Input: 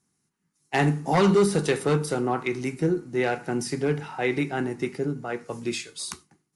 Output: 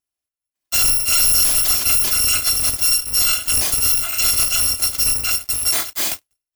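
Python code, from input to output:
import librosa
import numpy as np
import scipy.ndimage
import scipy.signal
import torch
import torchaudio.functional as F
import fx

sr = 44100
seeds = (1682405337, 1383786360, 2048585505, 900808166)

y = fx.bit_reversed(x, sr, seeds[0], block=256)
y = fx.leveller(y, sr, passes=5)
y = y * 10.0 ** (-2.5 / 20.0)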